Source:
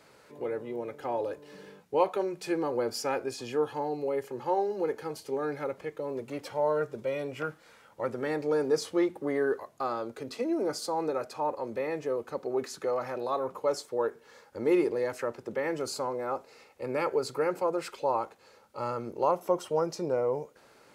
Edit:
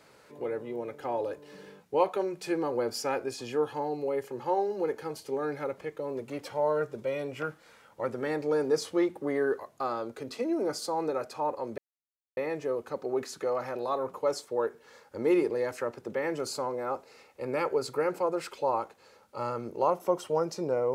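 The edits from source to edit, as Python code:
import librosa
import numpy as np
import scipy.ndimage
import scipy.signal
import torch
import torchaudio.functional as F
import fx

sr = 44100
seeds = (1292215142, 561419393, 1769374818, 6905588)

y = fx.edit(x, sr, fx.insert_silence(at_s=11.78, length_s=0.59), tone=tone)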